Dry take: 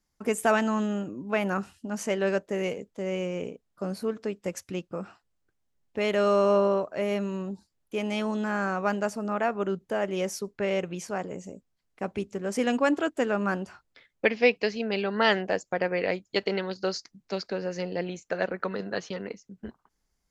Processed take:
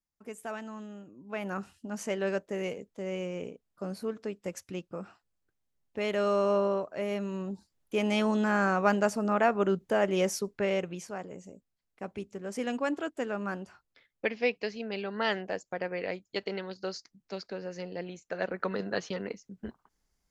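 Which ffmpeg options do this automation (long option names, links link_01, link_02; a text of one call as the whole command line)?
ffmpeg -i in.wav -af "volume=8.5dB,afade=type=in:start_time=1.13:duration=0.59:silence=0.281838,afade=type=in:start_time=7.19:duration=0.9:silence=0.473151,afade=type=out:start_time=10.25:duration=0.9:silence=0.354813,afade=type=in:start_time=18.28:duration=0.44:silence=0.473151" out.wav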